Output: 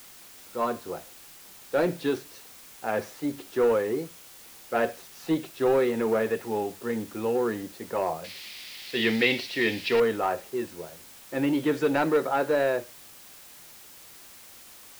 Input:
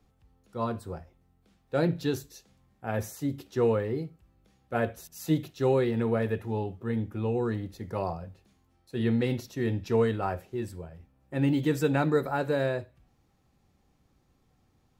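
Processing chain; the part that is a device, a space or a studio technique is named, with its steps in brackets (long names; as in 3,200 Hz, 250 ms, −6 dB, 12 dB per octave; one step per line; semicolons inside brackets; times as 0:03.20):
tape answering machine (band-pass filter 310–3,300 Hz; soft clipping −21.5 dBFS, distortion −17 dB; tape wow and flutter; white noise bed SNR 20 dB)
0:08.24–0:10.00: flat-topped bell 3,100 Hz +14 dB
level +6 dB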